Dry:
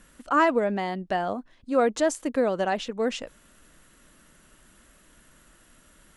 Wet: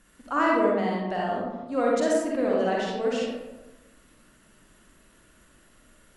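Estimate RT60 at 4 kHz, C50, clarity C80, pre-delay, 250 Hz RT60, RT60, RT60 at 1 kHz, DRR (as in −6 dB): 0.55 s, −2.0 dB, 2.0 dB, 39 ms, 1.2 s, 1.1 s, 1.0 s, −4.0 dB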